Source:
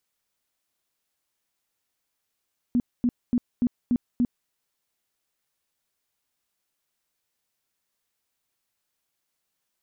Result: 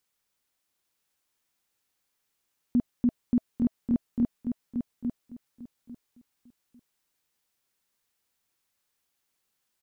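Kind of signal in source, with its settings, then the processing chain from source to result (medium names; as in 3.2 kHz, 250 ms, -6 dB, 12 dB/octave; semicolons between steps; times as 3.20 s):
tone bursts 243 Hz, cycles 12, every 0.29 s, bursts 6, -18 dBFS
band-stop 650 Hz, Q 12; on a send: feedback delay 848 ms, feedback 21%, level -6 dB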